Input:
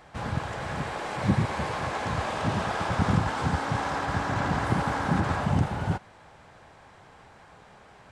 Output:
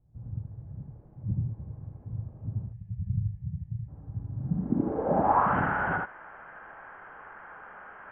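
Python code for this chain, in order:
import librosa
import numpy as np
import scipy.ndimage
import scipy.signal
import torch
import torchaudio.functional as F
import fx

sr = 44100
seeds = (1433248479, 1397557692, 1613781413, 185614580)

y = fx.spec_box(x, sr, start_s=2.65, length_s=1.23, low_hz=210.0, high_hz=1700.0, gain_db=-22)
y = fx.brickwall_lowpass(y, sr, high_hz=3300.0)
y = fx.peak_eq(y, sr, hz=96.0, db=-13.5, octaves=2.0)
y = y + 10.0 ** (-3.5 / 20.0) * np.pad(y, (int(77 * sr / 1000.0), 0))[:len(y)]
y = fx.filter_sweep_lowpass(y, sr, from_hz=110.0, to_hz=1500.0, start_s=4.34, end_s=5.57, q=3.7)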